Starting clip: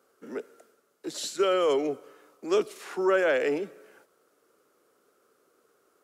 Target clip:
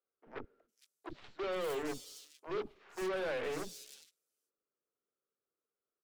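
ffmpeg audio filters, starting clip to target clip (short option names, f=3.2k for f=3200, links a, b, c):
-filter_complex "[0:a]agate=range=-14dB:threshold=-56dB:ratio=16:detection=peak,lowshelf=f=420:g=7.5,aeval=exprs='0.299*(cos(1*acos(clip(val(0)/0.299,-1,1)))-cos(1*PI/2))+0.119*(cos(2*acos(clip(val(0)/0.299,-1,1)))-cos(2*PI/2))+0.0473*(cos(7*acos(clip(val(0)/0.299,-1,1)))-cos(7*PI/2))':c=same,volume=35dB,asoftclip=hard,volume=-35dB,acrossover=split=310|4100[a][b][c];[a]adelay=40[d];[c]adelay=460[e];[d][b][e]amix=inputs=3:normalize=0,volume=2.5dB"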